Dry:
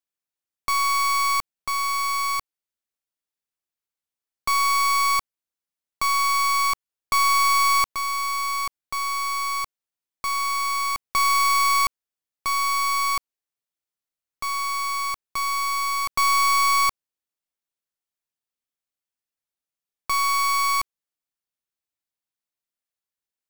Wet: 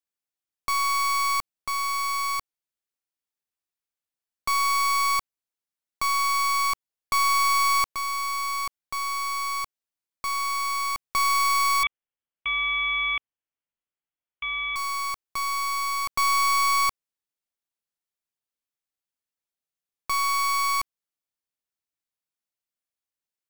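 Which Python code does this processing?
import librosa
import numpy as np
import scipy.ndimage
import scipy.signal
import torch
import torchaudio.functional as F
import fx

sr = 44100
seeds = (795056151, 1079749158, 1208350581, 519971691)

y = fx.freq_invert(x, sr, carrier_hz=3400, at=(11.83, 14.76))
y = y * librosa.db_to_amplitude(-2.5)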